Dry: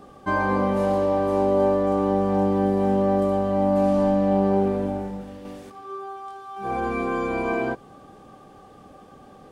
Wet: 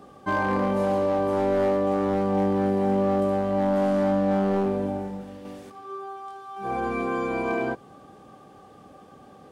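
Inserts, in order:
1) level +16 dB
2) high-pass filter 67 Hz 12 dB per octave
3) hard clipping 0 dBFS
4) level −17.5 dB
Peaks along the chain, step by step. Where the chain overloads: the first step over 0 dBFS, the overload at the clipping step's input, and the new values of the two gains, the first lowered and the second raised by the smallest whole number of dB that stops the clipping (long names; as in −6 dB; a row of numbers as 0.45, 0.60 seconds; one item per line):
+7.0, +7.0, 0.0, −17.5 dBFS
step 1, 7.0 dB
step 1 +9 dB, step 4 −10.5 dB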